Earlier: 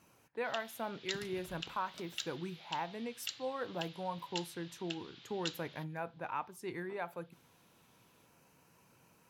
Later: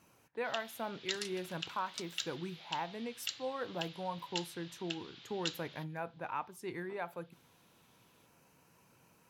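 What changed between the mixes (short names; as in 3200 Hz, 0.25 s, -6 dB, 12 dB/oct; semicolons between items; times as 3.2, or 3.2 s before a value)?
first sound: send +6.0 dB; second sound: add weighting filter ITU-R 468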